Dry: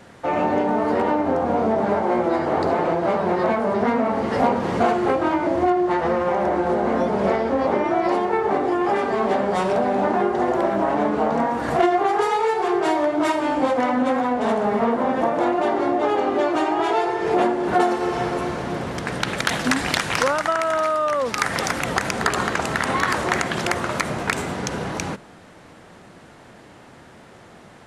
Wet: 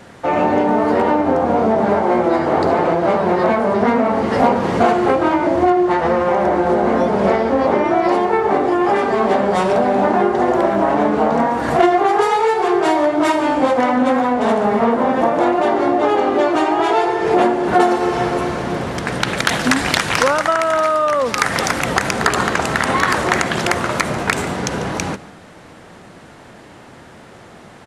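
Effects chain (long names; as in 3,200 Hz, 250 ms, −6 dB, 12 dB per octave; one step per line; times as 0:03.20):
single-tap delay 144 ms −17.5 dB
level +5 dB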